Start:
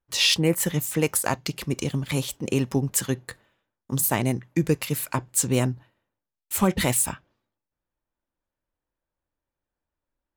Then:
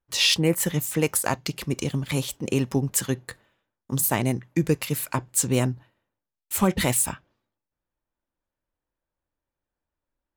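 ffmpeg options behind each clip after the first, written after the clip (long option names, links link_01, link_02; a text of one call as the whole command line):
ffmpeg -i in.wav -af anull out.wav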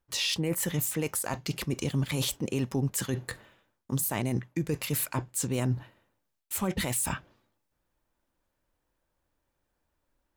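ffmpeg -i in.wav -af "areverse,acompressor=threshold=-31dB:ratio=12,areverse,alimiter=level_in=4dB:limit=-24dB:level=0:latency=1:release=29,volume=-4dB,volume=8dB" out.wav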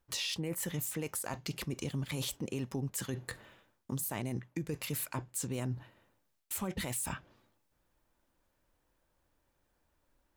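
ffmpeg -i in.wav -af "acompressor=threshold=-44dB:ratio=2,volume=2.5dB" out.wav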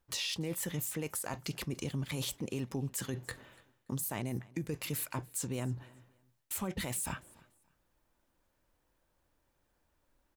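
ffmpeg -i in.wav -af "aecho=1:1:288|576:0.0631|0.0158" out.wav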